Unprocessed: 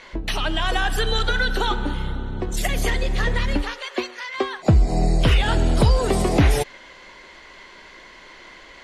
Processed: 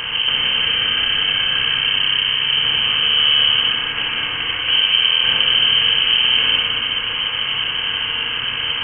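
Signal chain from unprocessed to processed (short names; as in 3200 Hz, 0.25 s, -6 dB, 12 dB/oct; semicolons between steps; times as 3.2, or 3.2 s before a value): per-bin compression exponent 0.2; low shelf 260 Hz +4 dB; FDN reverb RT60 2.3 s, low-frequency decay 0.95×, high-frequency decay 0.85×, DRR -2 dB; inverted band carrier 3100 Hz; gain -14 dB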